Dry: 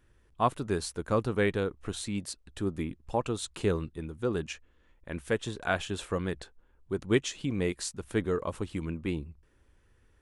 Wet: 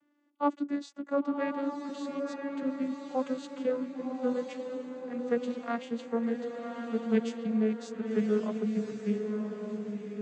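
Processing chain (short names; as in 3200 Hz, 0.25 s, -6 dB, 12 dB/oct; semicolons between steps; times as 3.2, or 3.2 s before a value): vocoder on a gliding note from D4, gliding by -7 st; on a send: diffused feedback echo 1.08 s, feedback 42%, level -4.5 dB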